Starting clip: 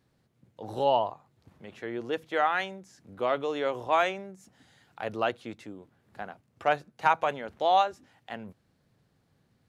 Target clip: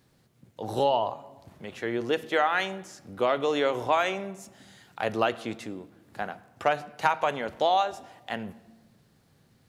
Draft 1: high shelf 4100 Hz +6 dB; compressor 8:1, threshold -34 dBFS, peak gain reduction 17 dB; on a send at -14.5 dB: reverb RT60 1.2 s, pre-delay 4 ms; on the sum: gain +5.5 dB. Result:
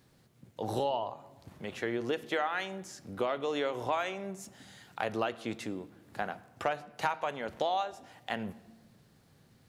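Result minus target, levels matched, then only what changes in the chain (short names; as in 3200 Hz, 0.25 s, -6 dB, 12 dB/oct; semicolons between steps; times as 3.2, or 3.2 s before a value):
compressor: peak gain reduction +8 dB
change: compressor 8:1, threshold -25 dBFS, peak gain reduction 9 dB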